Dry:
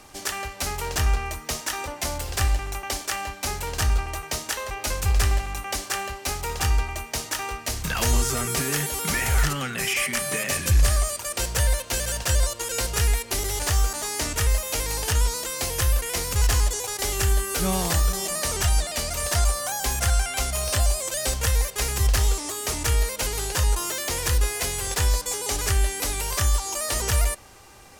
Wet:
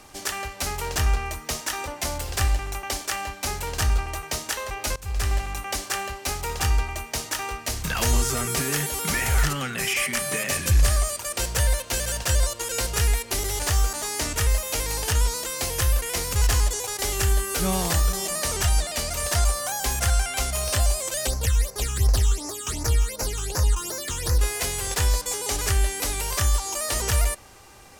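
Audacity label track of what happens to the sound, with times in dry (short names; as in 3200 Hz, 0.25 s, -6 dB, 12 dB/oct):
4.960000	5.420000	fade in, from -20.5 dB
21.270000	24.390000	phaser stages 8, 2.7 Hz, lowest notch 570–3200 Hz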